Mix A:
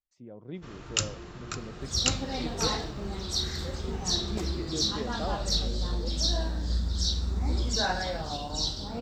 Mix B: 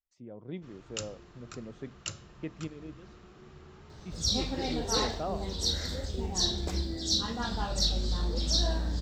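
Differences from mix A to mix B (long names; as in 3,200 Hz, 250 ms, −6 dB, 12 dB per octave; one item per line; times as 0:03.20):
first sound −10.5 dB
second sound: entry +2.30 s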